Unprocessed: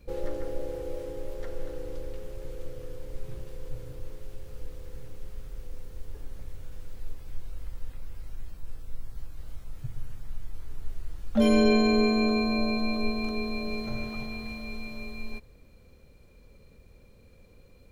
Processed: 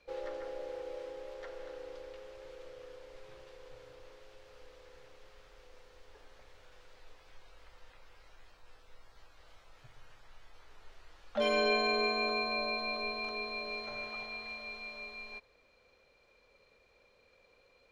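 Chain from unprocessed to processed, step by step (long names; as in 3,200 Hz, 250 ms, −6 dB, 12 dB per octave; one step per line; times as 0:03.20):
three-way crossover with the lows and the highs turned down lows −23 dB, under 490 Hz, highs −21 dB, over 5,800 Hz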